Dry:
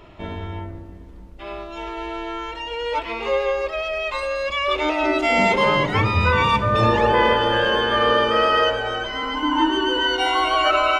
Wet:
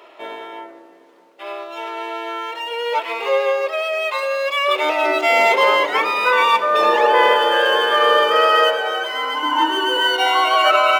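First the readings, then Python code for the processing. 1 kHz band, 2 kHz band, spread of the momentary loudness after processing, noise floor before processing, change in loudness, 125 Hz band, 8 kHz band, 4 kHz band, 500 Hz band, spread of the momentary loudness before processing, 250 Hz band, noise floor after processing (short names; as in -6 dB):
+4.0 dB, +4.0 dB, 16 LU, -39 dBFS, +3.0 dB, under -30 dB, +4.5 dB, +3.5 dB, +3.0 dB, 15 LU, -6.5 dB, -46 dBFS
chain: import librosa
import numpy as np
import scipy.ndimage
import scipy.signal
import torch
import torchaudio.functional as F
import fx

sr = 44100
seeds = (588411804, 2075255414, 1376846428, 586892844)

y = scipy.signal.medfilt(x, 5)
y = scipy.signal.sosfilt(scipy.signal.butter(4, 410.0, 'highpass', fs=sr, output='sos'), y)
y = y * 10.0 ** (4.0 / 20.0)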